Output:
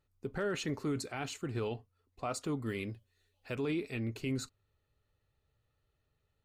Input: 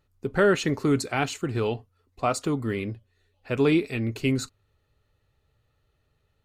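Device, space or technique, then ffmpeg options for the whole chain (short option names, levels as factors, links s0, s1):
clipper into limiter: -filter_complex "[0:a]asettb=1/sr,asplit=3[s0][s1][s2];[s0]atrim=end=2.664[s3];[s1]atrim=start=2.66:end=3.55,asetpts=PTS-STARTPTS,afade=t=in:d=0.004:c=qsin,afade=t=out:st=0.886:d=0.004:c=qsin,highshelf=f=3200:g=9.5[s4];[s2]atrim=start=3.546[s5];[s3][s4]acrossfade=d=0.004:c1=hsin:c2=qsin[s6];[s6][s5]acrossfade=d=0.004:c1=qsin:c2=hsin,asoftclip=type=hard:threshold=0.266,alimiter=limit=0.119:level=0:latency=1:release=26,volume=0.376"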